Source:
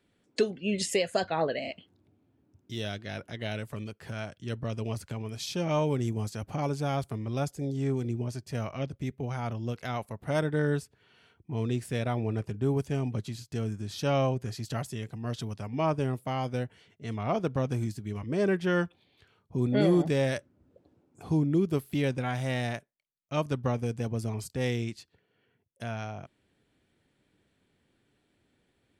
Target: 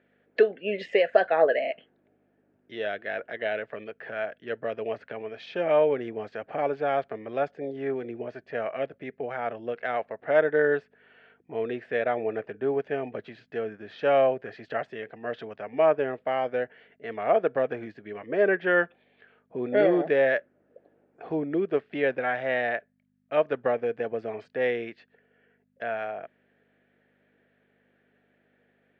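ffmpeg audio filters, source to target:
-af "aeval=exprs='val(0)+0.002*(sin(2*PI*50*n/s)+sin(2*PI*2*50*n/s)/2+sin(2*PI*3*50*n/s)/3+sin(2*PI*4*50*n/s)/4+sin(2*PI*5*50*n/s)/5)':c=same,highpass=410,equalizer=f=460:t=q:w=4:g=7,equalizer=f=650:t=q:w=4:g=7,equalizer=f=1k:t=q:w=4:g=-6,equalizer=f=1.7k:t=q:w=4:g=9,lowpass=f=2.7k:w=0.5412,lowpass=f=2.7k:w=1.3066,volume=3.5dB"

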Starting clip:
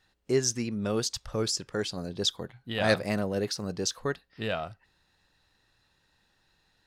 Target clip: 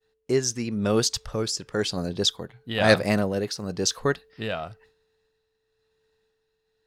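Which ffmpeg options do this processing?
-af "aeval=exprs='val(0)+0.000794*sin(2*PI*440*n/s)':c=same,agate=range=-33dB:threshold=-54dB:ratio=3:detection=peak,tremolo=f=0.99:d=0.5,volume=7dB"

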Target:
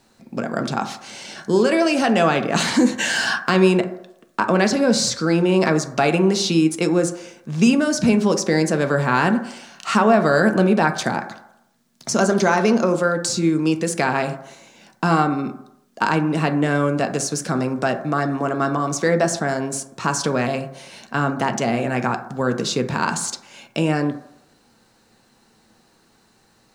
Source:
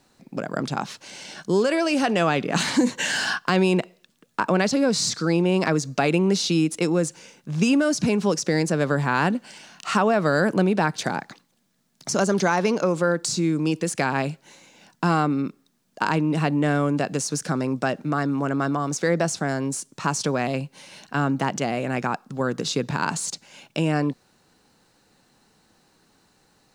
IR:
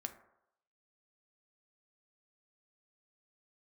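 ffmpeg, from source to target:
-filter_complex "[1:a]atrim=start_sample=2205[a];[0:a][a]afir=irnorm=-1:irlink=0,volume=6dB"

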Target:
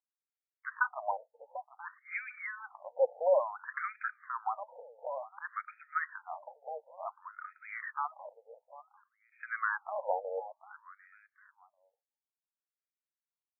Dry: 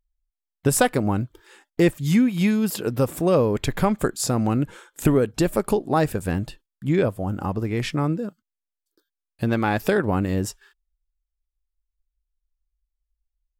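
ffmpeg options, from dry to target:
-af "aecho=1:1:746|1492:0.158|0.0317,afftfilt=real='re*between(b*sr/1024,630*pow(1800/630,0.5+0.5*sin(2*PI*0.56*pts/sr))/1.41,630*pow(1800/630,0.5+0.5*sin(2*PI*0.56*pts/sr))*1.41)':imag='im*between(b*sr/1024,630*pow(1800/630,0.5+0.5*sin(2*PI*0.56*pts/sr))/1.41,630*pow(1800/630,0.5+0.5*sin(2*PI*0.56*pts/sr))*1.41)':win_size=1024:overlap=0.75,volume=-2.5dB"

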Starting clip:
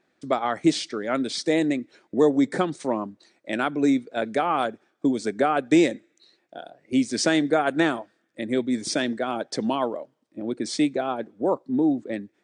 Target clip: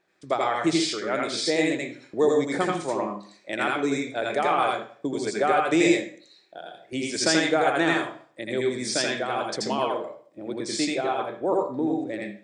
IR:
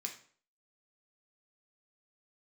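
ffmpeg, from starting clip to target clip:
-filter_complex "[0:a]equalizer=f=240:t=o:w=0.48:g=-12.5,bandreject=f=50:t=h:w=6,bandreject=f=100:t=h:w=6,bandreject=f=150:t=h:w=6,asplit=2[a][b];[1:a]atrim=start_sample=2205,adelay=82[c];[b][c]afir=irnorm=-1:irlink=0,volume=3.5dB[d];[a][d]amix=inputs=2:normalize=0,volume=-1.5dB"

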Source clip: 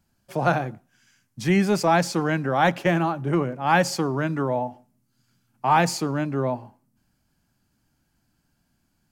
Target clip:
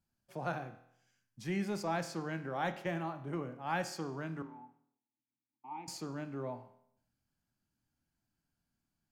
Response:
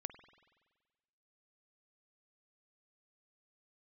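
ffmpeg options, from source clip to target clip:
-filter_complex "[0:a]asettb=1/sr,asplit=3[a][b][c];[a]atrim=end=4.424[d];[b]atrim=start=4.42:end=5.88,asetpts=PTS-STARTPTS,afade=t=in:d=0.004:c=qsin,afade=t=out:st=1.456:d=0.004:c=qsin,asplit=3[e][f][g];[e]bandpass=f=300:t=q:w=8,volume=0dB[h];[f]bandpass=f=870:t=q:w=8,volume=-6dB[i];[g]bandpass=f=2.24k:t=q:w=8,volume=-9dB[j];[h][i][j]amix=inputs=3:normalize=0[k];[c]atrim=start=5.876[l];[d][k]acrossfade=d=0.004:c1=hsin:c2=qsin[m];[m][l]acrossfade=d=0.004:c1=qsin:c2=hsin[n];[1:a]atrim=start_sample=2205,asetrate=83790,aresample=44100[o];[n][o]afir=irnorm=-1:irlink=0,volume=-6.5dB"

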